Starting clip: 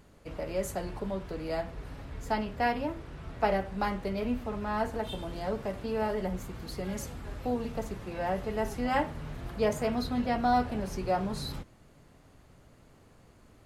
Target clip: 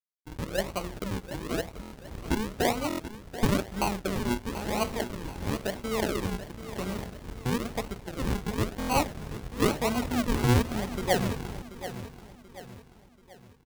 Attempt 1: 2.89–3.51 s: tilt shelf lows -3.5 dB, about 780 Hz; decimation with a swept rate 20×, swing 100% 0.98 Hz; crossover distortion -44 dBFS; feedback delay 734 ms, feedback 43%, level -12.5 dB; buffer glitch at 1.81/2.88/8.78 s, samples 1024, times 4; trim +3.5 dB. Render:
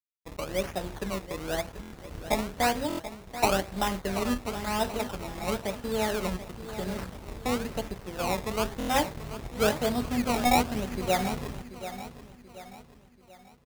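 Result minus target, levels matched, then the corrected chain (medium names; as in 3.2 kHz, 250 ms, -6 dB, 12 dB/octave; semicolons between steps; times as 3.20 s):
decimation with a swept rate: distortion -9 dB
2.89–3.51 s: tilt shelf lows -3.5 dB, about 780 Hz; decimation with a swept rate 49×, swing 100% 0.98 Hz; crossover distortion -44 dBFS; feedback delay 734 ms, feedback 43%, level -12.5 dB; buffer glitch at 1.81/2.88/8.78 s, samples 1024, times 4; trim +3.5 dB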